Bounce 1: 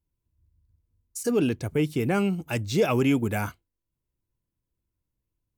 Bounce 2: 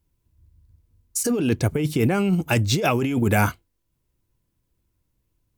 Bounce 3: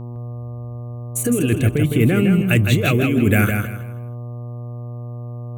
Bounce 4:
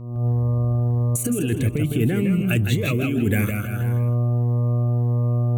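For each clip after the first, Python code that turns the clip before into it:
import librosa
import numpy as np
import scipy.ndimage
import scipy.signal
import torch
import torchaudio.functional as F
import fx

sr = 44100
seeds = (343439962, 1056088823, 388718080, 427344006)

y1 = fx.over_compress(x, sr, threshold_db=-27.0, ratio=-1.0)
y1 = y1 * librosa.db_to_amplitude(7.0)
y2 = fx.fixed_phaser(y1, sr, hz=2200.0, stages=4)
y2 = fx.dmg_buzz(y2, sr, base_hz=120.0, harmonics=10, level_db=-36.0, tilt_db=-9, odd_only=False)
y2 = fx.echo_feedback(y2, sr, ms=160, feedback_pct=28, wet_db=-5.5)
y2 = y2 * librosa.db_to_amplitude(5.0)
y3 = fx.recorder_agc(y2, sr, target_db=-10.5, rise_db_per_s=57.0, max_gain_db=30)
y3 = fx.notch_cascade(y3, sr, direction='rising', hz=1.7)
y3 = y3 * librosa.db_to_amplitude(-4.5)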